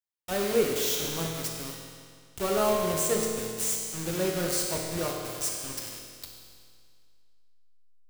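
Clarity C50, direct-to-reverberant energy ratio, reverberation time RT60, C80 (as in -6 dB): 2.0 dB, -0.5 dB, 2.1 s, 3.0 dB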